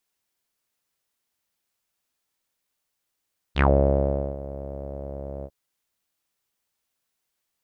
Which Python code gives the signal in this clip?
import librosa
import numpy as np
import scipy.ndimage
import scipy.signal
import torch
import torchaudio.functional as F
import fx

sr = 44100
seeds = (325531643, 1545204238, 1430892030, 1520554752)

y = fx.sub_voice(sr, note=37, wave='saw', cutoff_hz=580.0, q=6.6, env_oct=3.0, env_s=0.14, attack_ms=53.0, decay_s=0.76, sustain_db=-18, release_s=0.06, note_s=1.89, slope=12)